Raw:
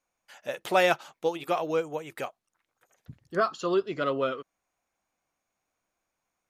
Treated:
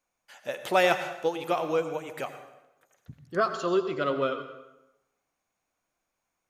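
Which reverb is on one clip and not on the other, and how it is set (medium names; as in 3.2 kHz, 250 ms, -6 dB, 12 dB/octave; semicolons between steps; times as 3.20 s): plate-style reverb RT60 0.93 s, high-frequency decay 0.8×, pre-delay 75 ms, DRR 9 dB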